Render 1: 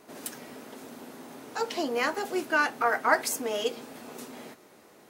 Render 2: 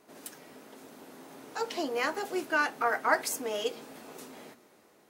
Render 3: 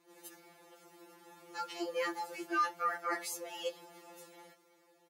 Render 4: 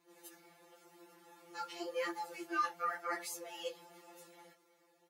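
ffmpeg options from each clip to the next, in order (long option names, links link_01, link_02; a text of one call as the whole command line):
ffmpeg -i in.wav -af "bandreject=frequency=60:width_type=h:width=6,bandreject=frequency=120:width_type=h:width=6,bandreject=frequency=180:width_type=h:width=6,bandreject=frequency=240:width_type=h:width=6,dynaudnorm=framelen=440:gausssize=5:maxgain=4dB,volume=-6.5dB" out.wav
ffmpeg -i in.wav -af "aecho=1:1:3.6:0.4,afreqshift=25,afftfilt=real='re*2.83*eq(mod(b,8),0)':imag='im*2.83*eq(mod(b,8),0)':win_size=2048:overlap=0.75,volume=-5dB" out.wav
ffmpeg -i in.wav -af "flanger=delay=4.4:depth=8.7:regen=-46:speed=0.91:shape=triangular,volume=1dB" out.wav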